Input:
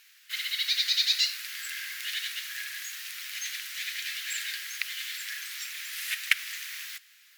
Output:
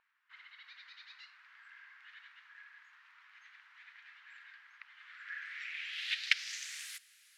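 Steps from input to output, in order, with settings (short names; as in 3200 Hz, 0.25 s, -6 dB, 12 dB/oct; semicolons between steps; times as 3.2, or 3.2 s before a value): dynamic EQ 1100 Hz, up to -3 dB, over -51 dBFS, Q 2.8; low-pass sweep 930 Hz -> 10000 Hz, 4.93–6.95; gain -7 dB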